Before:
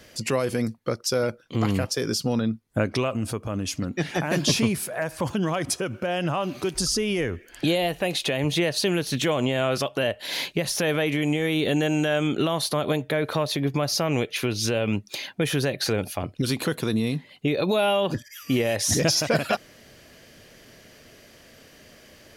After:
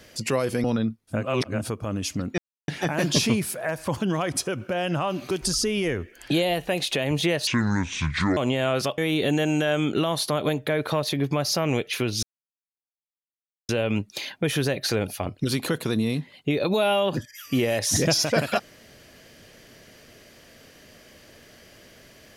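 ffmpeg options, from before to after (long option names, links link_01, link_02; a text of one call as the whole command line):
ffmpeg -i in.wav -filter_complex "[0:a]asplit=9[link_01][link_02][link_03][link_04][link_05][link_06][link_07][link_08][link_09];[link_01]atrim=end=0.642[link_10];[link_02]atrim=start=2.268:end=2.94[link_11];[link_03]atrim=start=2.7:end=3.31,asetpts=PTS-STARTPTS,areverse[link_12];[link_04]atrim=start=3.07:end=4.01,asetpts=PTS-STARTPTS,afade=type=out:start_time=0.936:duration=0.004:curve=hsin,apad=pad_dur=0.3[link_13];[link_05]atrim=start=4.01:end=8.804,asetpts=PTS-STARTPTS,afade=type=in:duration=0.004:curve=hsin[link_14];[link_06]atrim=start=8.8:end=9.33,asetpts=PTS-STARTPTS,asetrate=26019,aresample=44100,atrim=end_sample=39615,asetpts=PTS-STARTPTS[link_15];[link_07]atrim=start=9.326:end=9.942[link_16];[link_08]atrim=start=11.408:end=14.66,asetpts=PTS-STARTPTS,afade=type=out:start_time=3.248:duration=0.004:curve=hsin,apad=pad_dur=1.46[link_17];[link_09]atrim=start=14.66,asetpts=PTS-STARTPTS,afade=type=in:duration=0.004:curve=hsin[link_18];[link_10][link_11]acrossfade=duration=0.004:curve1=hsin:curve2=hsin[link_19];[link_19][link_12]acrossfade=duration=0.24:curve1=tri:curve2=tri[link_20];[link_13][link_14]concat=n=2:v=0:a=1[link_21];[link_20][link_21]acrossfade=duration=0.24:curve1=tri:curve2=tri[link_22];[link_22][link_15]acrossfade=duration=0.004:curve1=hsin:curve2=hsin[link_23];[link_23][link_16]acrossfade=duration=0.004:curve1=hsin:curve2=hsin[link_24];[link_17][link_18]concat=n=2:v=0:a=1[link_25];[link_24][link_25]acrossfade=duration=0.004:curve1=hsin:curve2=hsin" out.wav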